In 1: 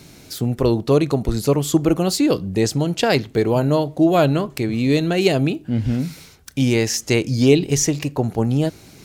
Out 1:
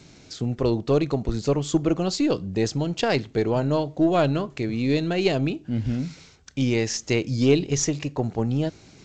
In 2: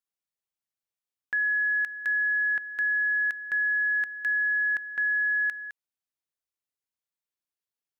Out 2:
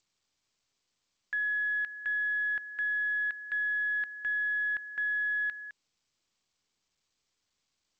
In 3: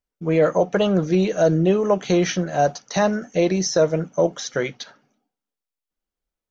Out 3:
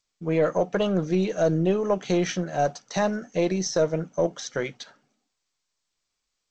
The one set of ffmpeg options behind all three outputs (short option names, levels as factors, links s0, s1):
-af "aeval=exprs='0.794*(cos(1*acos(clip(val(0)/0.794,-1,1)))-cos(1*PI/2))+0.02*(cos(6*acos(clip(val(0)/0.794,-1,1)))-cos(6*PI/2))':c=same,volume=0.562" -ar 16000 -c:a g722